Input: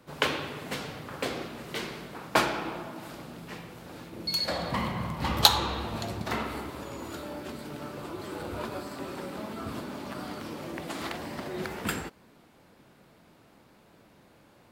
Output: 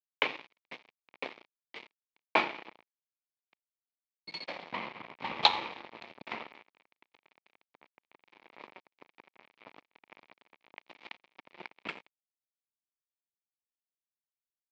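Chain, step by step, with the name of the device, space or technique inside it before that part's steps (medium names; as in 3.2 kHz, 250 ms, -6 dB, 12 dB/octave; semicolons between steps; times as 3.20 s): blown loudspeaker (crossover distortion -30.5 dBFS; cabinet simulation 250–3900 Hz, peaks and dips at 910 Hz +4 dB, 1.5 kHz -6 dB, 2.3 kHz +9 dB); trim -2 dB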